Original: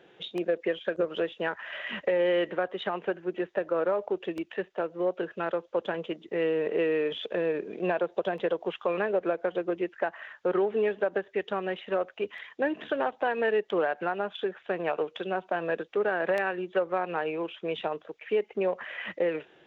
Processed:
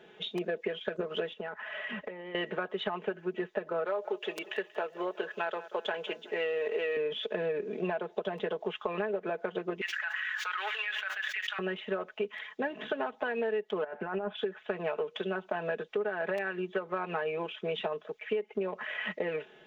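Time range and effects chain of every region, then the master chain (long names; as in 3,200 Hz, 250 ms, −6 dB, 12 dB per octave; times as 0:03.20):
0:01.33–0:02.35: high-shelf EQ 3,200 Hz −10 dB + downward compressor, threshold −36 dBFS
0:03.85–0:06.97: high-pass filter 370 Hz + high-shelf EQ 2,600 Hz +8.5 dB + repeating echo 184 ms, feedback 46%, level −19.5 dB
0:09.81–0:11.59: high-pass filter 1,500 Hz 24 dB per octave + envelope flattener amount 100%
0:13.84–0:14.37: one scale factor per block 7 bits + low-pass filter 2,000 Hz + compressor whose output falls as the input rises −35 dBFS
whole clip: comb filter 4.7 ms, depth 73%; downward compressor, threshold −29 dBFS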